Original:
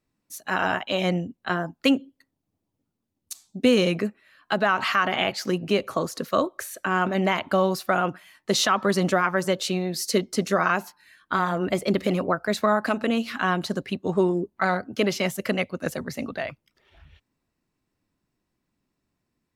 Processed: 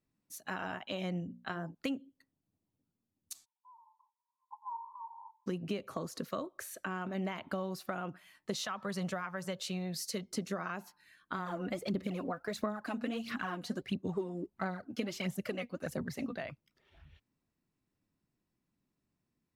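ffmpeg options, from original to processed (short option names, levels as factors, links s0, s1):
-filter_complex "[0:a]asettb=1/sr,asplit=3[s0][s1][s2];[s0]atrim=end=1.204[s3];[s1]atrim=start=1.2:end=1.75,asetpts=PTS-STARTPTS,afade=t=in:d=0.004:c=qsin,afade=t=out:st=0.546:d=0.004:c=qsin,bandreject=f=60:t=h:w=6,bandreject=f=120:t=h:w=6,bandreject=f=180:t=h:w=6,bandreject=f=240:t=h:w=6,bandreject=f=300:t=h:w=6,bandreject=f=360:t=h:w=6,bandreject=f=420:t=h:w=6,bandreject=f=480:t=h:w=6,bandreject=f=540:t=h:w=6,bandreject=f=600:t=h:w=6[s4];[s2]atrim=start=1.746[s5];[s3][s4]acrossfade=d=0.004:c1=hsin:c2=qsin[s6];[s6][s5]acrossfade=d=0.004:c1=qsin:c2=hsin,asplit=3[s7][s8][s9];[s7]afade=t=out:st=3.44:d=0.02[s10];[s8]asuperpass=centerf=950:order=8:qfactor=6.1,afade=t=in:st=3.44:d=0.02,afade=t=out:st=5.46:d=0.02[s11];[s9]afade=t=in:st=5.46:d=0.02[s12];[s10][s11][s12]amix=inputs=3:normalize=0,asettb=1/sr,asplit=3[s13][s14][s15];[s13]atrim=end=8.554[s16];[s14]atrim=start=8.55:end=10.31,asetpts=PTS-STARTPTS,afade=t=in:d=0.004:c=qsin,afade=t=out:st=1.756:d=0.004:c=qsin,equalizer=f=300:t=o:w=0.77:g=-12[s17];[s15]atrim=start=10.306[s18];[s16][s17]acrossfade=d=0.004:c1=hsin:c2=qsin[s19];[s19][s18]acrossfade=d=0.004:c1=qsin:c2=hsin,asplit=3[s20][s21][s22];[s20]afade=t=out:st=11.45:d=0.02[s23];[s21]aphaser=in_gain=1:out_gain=1:delay=4.2:decay=0.61:speed=1.5:type=sinusoidal,afade=t=in:st=11.45:d=0.02,afade=t=out:st=16.35:d=0.02[s24];[s22]afade=t=in:st=16.35:d=0.02[s25];[s23][s24][s25]amix=inputs=3:normalize=0,acompressor=threshold=0.0398:ratio=4,equalizer=f=160:w=0.75:g=5,volume=0.376"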